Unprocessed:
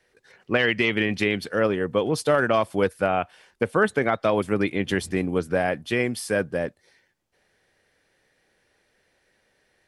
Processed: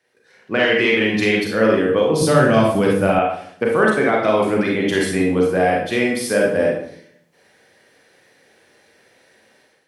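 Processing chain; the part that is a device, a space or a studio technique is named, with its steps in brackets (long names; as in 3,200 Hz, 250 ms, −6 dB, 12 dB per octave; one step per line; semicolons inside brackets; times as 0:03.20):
far laptop microphone (convolution reverb RT60 0.60 s, pre-delay 30 ms, DRR −2.5 dB; high-pass filter 130 Hz 12 dB per octave; automatic gain control gain up to 11.5 dB)
0:02.21–0:03.19: bass and treble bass +13 dB, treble +6 dB
level −3 dB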